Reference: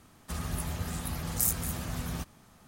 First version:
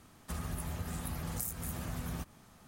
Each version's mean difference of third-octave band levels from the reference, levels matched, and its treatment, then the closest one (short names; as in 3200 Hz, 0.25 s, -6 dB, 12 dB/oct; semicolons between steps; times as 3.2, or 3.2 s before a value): 2.5 dB: compressor 6:1, threshold -33 dBFS, peak gain reduction 10.5 dB; dynamic EQ 4600 Hz, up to -4 dB, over -54 dBFS, Q 0.74; gain -1 dB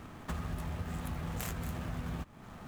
6.0 dB: median filter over 9 samples; compressor 4:1, threshold -48 dBFS, peak gain reduction 16 dB; gain +10.5 dB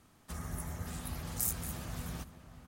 1.5 dB: spectral gain 0.33–0.87, 2300–5300 Hz -8 dB; outdoor echo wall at 100 m, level -12 dB; gain -6 dB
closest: third